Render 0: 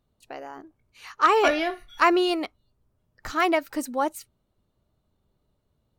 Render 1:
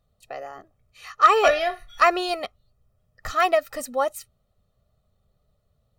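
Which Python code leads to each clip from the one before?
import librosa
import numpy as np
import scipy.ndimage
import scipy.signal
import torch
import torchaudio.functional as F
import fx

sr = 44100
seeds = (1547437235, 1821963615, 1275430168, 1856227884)

y = x + 0.81 * np.pad(x, (int(1.6 * sr / 1000.0), 0))[:len(x)]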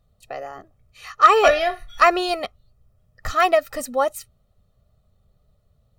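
y = fx.low_shelf(x, sr, hz=200.0, db=5.0)
y = y * 10.0 ** (2.5 / 20.0)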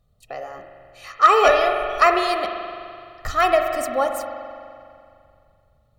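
y = fx.rev_spring(x, sr, rt60_s=2.4, pass_ms=(42,), chirp_ms=60, drr_db=4.5)
y = y * 10.0 ** (-1.0 / 20.0)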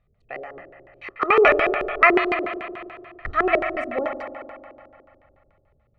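y = fx.filter_lfo_lowpass(x, sr, shape='square', hz=6.9, low_hz=380.0, high_hz=2200.0, q=4.4)
y = y * 10.0 ** (-3.5 / 20.0)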